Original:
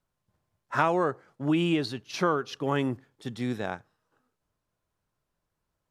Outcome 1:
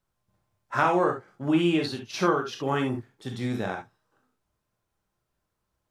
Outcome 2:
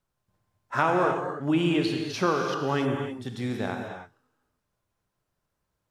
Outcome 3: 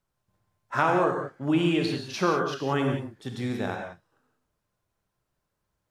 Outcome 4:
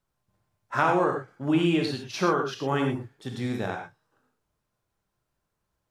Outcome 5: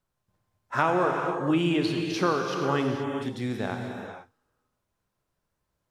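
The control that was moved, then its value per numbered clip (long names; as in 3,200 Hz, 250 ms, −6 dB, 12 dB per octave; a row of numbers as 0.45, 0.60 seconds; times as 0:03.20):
reverb whose tail is shaped and stops, gate: 90, 330, 210, 140, 510 milliseconds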